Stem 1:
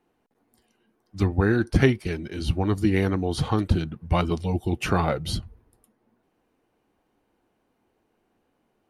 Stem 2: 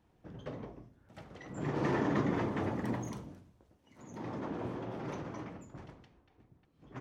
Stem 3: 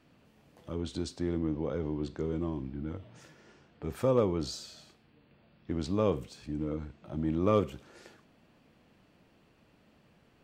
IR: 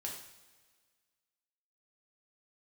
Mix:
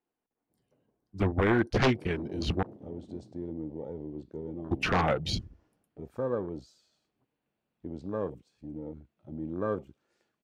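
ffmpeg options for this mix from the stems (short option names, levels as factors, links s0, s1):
-filter_complex "[0:a]aeval=exprs='0.168*(abs(mod(val(0)/0.168+3,4)-2)-1)':c=same,volume=1,asplit=3[s0][s1][s2];[s0]atrim=end=2.63,asetpts=PTS-STARTPTS,afade=t=out:st=2.626:d=0.004:c=hsin[s3];[s1]atrim=start=2.63:end=4.71,asetpts=PTS-STARTPTS,volume=0[s4];[s2]atrim=start=4.71,asetpts=PTS-STARTPTS,afade=t=in:d=0.004:c=hsin[s5];[s3][s4][s5]concat=n=3:v=0:a=1[s6];[1:a]lowpass=1100,adynamicsmooth=sensitivity=6:basefreq=700,adelay=250,volume=0.282[s7];[2:a]adelay=2150,volume=0.631[s8];[s6][s7][s8]amix=inputs=3:normalize=0,lowshelf=f=170:g=-6,afwtdn=0.01"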